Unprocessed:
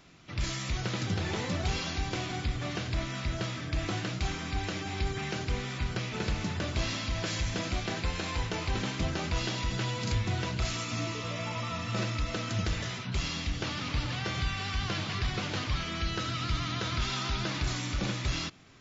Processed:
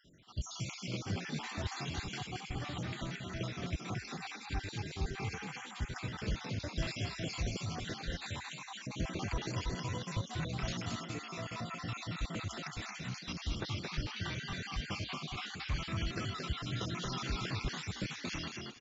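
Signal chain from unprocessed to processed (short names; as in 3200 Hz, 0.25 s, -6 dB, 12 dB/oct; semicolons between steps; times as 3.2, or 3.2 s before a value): random spectral dropouts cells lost 62%; frequency-shifting echo 0.224 s, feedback 30%, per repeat +53 Hz, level -4 dB; gain -4 dB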